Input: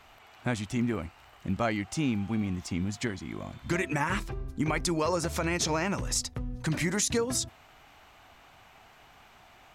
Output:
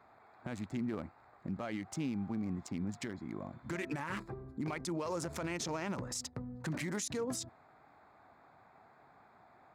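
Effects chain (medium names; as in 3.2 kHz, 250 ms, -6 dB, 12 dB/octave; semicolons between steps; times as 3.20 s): local Wiener filter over 15 samples; high-pass 130 Hz 12 dB/octave; peak limiter -26 dBFS, peak gain reduction 11 dB; trim -3 dB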